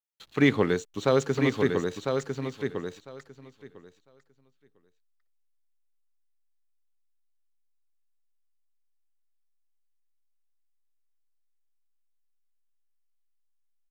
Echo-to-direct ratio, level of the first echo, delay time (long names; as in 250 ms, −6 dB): −5.5 dB, −5.5 dB, 1,001 ms